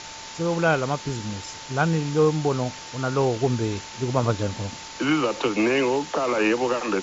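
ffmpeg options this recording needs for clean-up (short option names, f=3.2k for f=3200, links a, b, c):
-af "bandreject=f=890:w=30,afwtdn=0.018"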